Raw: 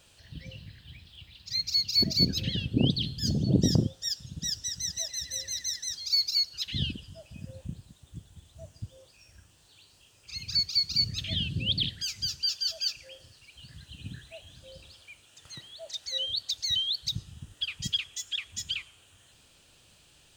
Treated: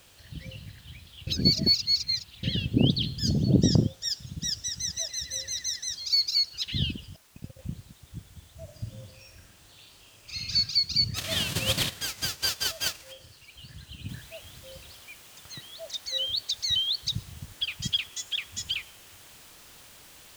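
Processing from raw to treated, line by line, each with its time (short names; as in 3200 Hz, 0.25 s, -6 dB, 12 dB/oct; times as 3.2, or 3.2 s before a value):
1.27–2.43 reverse
3.34–4.05 steep low-pass 8400 Hz 96 dB/oct
7.16–7.59 gate -42 dBFS, range -39 dB
8.64–10.55 reverb throw, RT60 0.81 s, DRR -0.5 dB
11.14–13.11 spectral whitening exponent 0.3
14.09 noise floor step -60 dB -52 dB
whole clip: high shelf 9200 Hz -5.5 dB; gain +2.5 dB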